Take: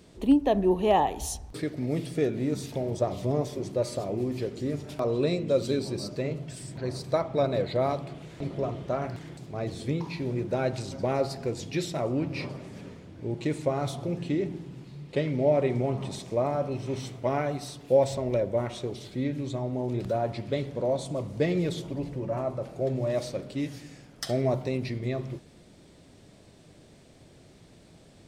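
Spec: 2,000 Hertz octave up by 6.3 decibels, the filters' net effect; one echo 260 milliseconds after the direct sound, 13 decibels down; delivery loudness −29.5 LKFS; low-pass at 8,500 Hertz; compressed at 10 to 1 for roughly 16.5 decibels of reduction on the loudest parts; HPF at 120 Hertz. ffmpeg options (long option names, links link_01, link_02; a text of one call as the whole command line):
ffmpeg -i in.wav -af "highpass=120,lowpass=8500,equalizer=frequency=2000:width_type=o:gain=7.5,acompressor=threshold=-33dB:ratio=10,aecho=1:1:260:0.224,volume=9dB" out.wav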